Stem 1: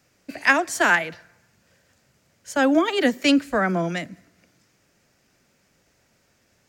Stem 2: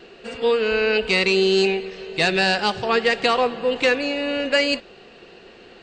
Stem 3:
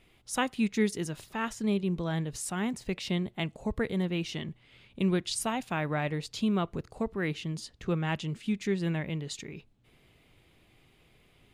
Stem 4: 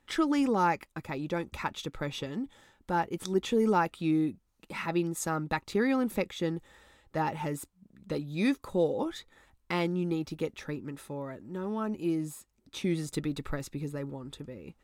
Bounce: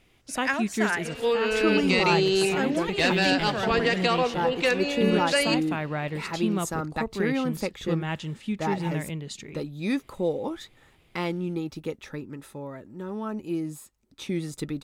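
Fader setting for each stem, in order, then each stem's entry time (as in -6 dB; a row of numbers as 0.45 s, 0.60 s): -9.5 dB, -5.0 dB, +0.5 dB, +0.5 dB; 0.00 s, 0.80 s, 0.00 s, 1.45 s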